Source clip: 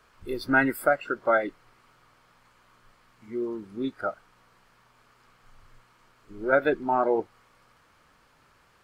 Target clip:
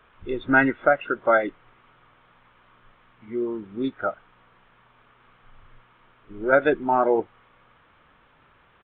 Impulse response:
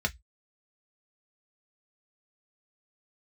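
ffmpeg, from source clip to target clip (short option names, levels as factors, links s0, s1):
-af "aresample=8000,aresample=44100,volume=1.5"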